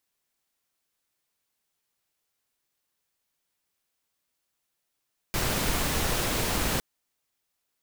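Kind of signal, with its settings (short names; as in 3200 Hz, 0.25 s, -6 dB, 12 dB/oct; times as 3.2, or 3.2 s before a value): noise pink, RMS -27 dBFS 1.46 s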